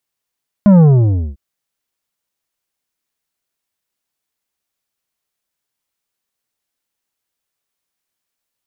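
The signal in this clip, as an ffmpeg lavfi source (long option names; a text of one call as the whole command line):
ffmpeg -f lavfi -i "aevalsrc='0.562*clip((0.7-t)/0.57,0,1)*tanh(2.82*sin(2*PI*210*0.7/log(65/210)*(exp(log(65/210)*t/0.7)-1)))/tanh(2.82)':duration=0.7:sample_rate=44100" out.wav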